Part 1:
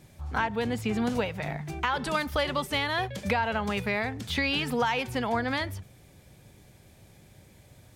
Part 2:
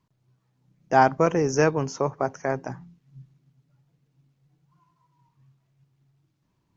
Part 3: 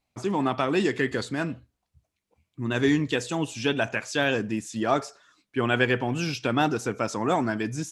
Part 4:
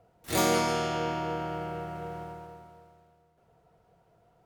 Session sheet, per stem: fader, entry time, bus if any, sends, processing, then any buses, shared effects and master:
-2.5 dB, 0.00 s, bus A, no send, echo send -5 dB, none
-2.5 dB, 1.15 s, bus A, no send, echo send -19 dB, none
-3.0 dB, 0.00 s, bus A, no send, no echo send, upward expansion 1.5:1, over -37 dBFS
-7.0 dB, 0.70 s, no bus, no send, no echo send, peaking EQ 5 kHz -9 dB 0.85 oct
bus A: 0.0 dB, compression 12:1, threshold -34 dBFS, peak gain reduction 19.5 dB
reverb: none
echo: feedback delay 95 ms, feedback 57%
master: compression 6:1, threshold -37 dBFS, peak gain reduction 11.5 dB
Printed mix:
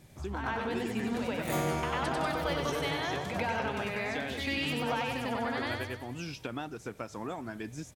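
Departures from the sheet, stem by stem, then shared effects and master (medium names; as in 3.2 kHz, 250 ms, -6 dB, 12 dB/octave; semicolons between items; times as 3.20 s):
stem 4: entry 0.70 s -> 1.15 s; master: missing compression 6:1, threshold -37 dBFS, peak gain reduction 11.5 dB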